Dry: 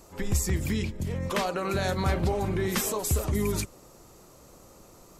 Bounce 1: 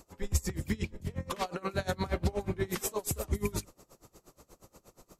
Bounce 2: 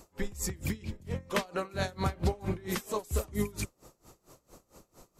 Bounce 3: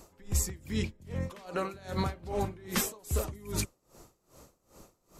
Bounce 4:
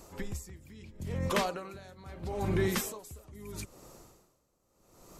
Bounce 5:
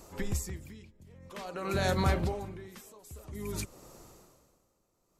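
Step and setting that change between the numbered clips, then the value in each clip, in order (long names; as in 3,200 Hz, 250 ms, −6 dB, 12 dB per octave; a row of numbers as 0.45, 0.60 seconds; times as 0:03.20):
tremolo with a sine in dB, speed: 8.4, 4.4, 2.5, 0.77, 0.51 Hertz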